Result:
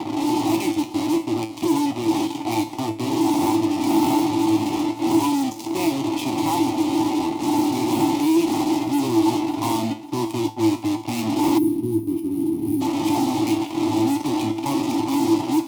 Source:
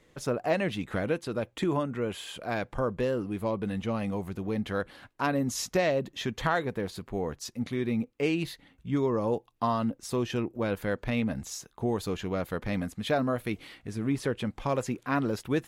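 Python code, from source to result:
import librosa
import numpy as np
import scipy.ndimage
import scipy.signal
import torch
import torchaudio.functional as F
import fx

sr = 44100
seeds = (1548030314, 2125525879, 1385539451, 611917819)

p1 = fx.dmg_wind(x, sr, seeds[0], corner_hz=500.0, level_db=-29.0)
p2 = fx.vowel_filter(p1, sr, vowel='u')
p3 = fx.fuzz(p2, sr, gain_db=52.0, gate_db=-48.0)
p4 = p2 + F.gain(torch.from_numpy(p3), -4.0).numpy()
p5 = fx.comb_fb(p4, sr, f0_hz=110.0, decay_s=0.31, harmonics='all', damping=0.0, mix_pct=80)
p6 = p5 + fx.echo_feedback(p5, sr, ms=548, feedback_pct=34, wet_db=-14.5, dry=0)
p7 = fx.spec_box(p6, sr, start_s=11.58, length_s=1.23, low_hz=430.0, high_hz=8900.0, gain_db=-20)
p8 = scipy.signal.sosfilt(scipy.signal.butter(2, 46.0, 'highpass', fs=sr, output='sos'), p7)
p9 = fx.high_shelf(p8, sr, hz=11000.0, db=4.5)
p10 = fx.fixed_phaser(p9, sr, hz=310.0, stages=8)
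y = F.gain(torch.from_numpy(p10), 8.0).numpy()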